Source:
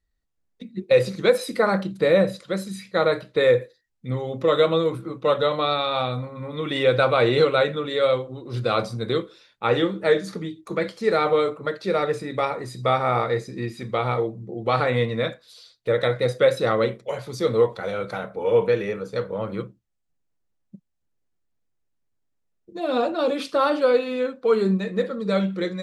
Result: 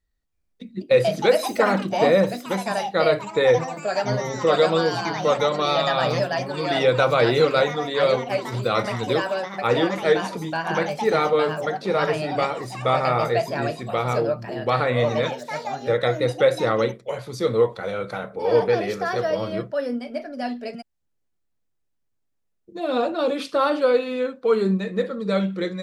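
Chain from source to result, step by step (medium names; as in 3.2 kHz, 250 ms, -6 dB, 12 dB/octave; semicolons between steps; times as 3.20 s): ever faster or slower copies 325 ms, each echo +4 st, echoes 3, each echo -6 dB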